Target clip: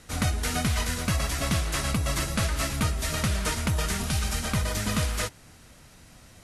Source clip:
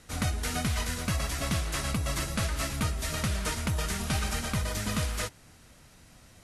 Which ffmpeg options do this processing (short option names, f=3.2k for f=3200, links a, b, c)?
-filter_complex "[0:a]asettb=1/sr,asplit=3[a][b][c];[a]atrim=end=4.034[d];[b]atrim=start=4.03:end=4.45,asetpts=PTS-STARTPTS,afade=t=in:d=0.004:c=qsin,afade=t=out:st=0.416:d=0.004:c=qsin,acrossover=split=170|3000[e][f][g];[f]acompressor=threshold=-37dB:ratio=6[h];[e][h][g]amix=inputs=3:normalize=0[i];[c]atrim=start=4.446[j];[d][i]acrossfade=d=0.004:c1=hsin:c2=qsin[k];[k][j]acrossfade=d=0.004:c1=qsin:c2=hsin,volume=3.5dB"